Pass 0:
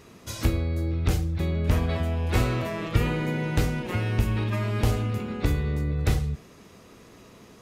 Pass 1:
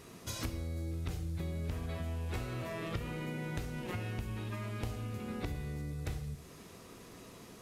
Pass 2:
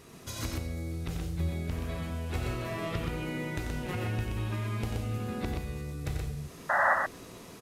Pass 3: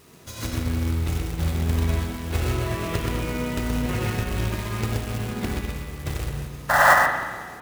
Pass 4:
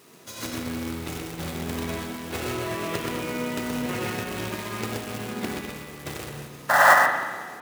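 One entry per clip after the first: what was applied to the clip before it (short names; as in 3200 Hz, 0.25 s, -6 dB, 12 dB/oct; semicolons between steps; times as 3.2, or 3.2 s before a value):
compressor 6:1, threshold -33 dBFS, peak gain reduction 16.5 dB; band noise 3300–13000 Hz -62 dBFS; non-linear reverb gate 0.26 s falling, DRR 9.5 dB; gain -3 dB
painted sound noise, 6.69–6.94, 540–2000 Hz -29 dBFS; loudspeakers at several distances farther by 31 m -7 dB, 43 m -4 dB; AGC gain up to 3 dB
companded quantiser 4-bit; spring tank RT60 2.2 s, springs 49/53 ms, chirp 55 ms, DRR 2 dB; upward expander 1.5:1, over -42 dBFS; gain +9 dB
HPF 200 Hz 12 dB/oct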